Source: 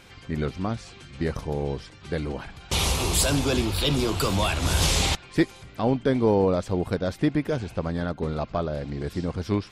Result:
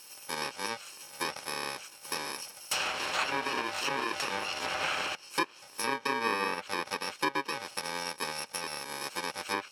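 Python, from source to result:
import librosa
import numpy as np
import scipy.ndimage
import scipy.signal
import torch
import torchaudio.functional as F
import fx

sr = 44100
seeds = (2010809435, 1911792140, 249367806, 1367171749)

y = fx.bit_reversed(x, sr, seeds[0], block=64)
y = fx.env_lowpass_down(y, sr, base_hz=2400.0, full_db=-19.0)
y = scipy.signal.sosfilt(scipy.signal.butter(2, 680.0, 'highpass', fs=sr, output='sos'), y)
y = y * librosa.db_to_amplitude(3.0)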